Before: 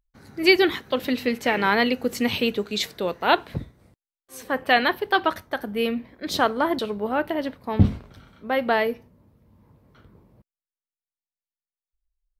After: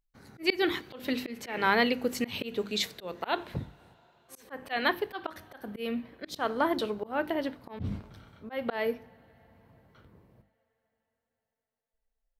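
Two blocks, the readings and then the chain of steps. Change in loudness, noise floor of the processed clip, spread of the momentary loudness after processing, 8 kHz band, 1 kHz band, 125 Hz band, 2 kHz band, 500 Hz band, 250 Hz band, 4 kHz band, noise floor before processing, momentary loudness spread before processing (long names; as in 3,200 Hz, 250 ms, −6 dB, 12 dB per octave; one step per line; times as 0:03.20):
−8.5 dB, below −85 dBFS, 15 LU, −6.0 dB, −9.0 dB, −13.0 dB, −8.0 dB, −8.0 dB, −8.0 dB, −8.0 dB, below −85 dBFS, 11 LU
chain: mains-hum notches 50/100/150/200/250/300/350 Hz
coupled-rooms reverb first 0.48 s, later 4.8 s, from −19 dB, DRR 20 dB
volume swells 183 ms
level −4 dB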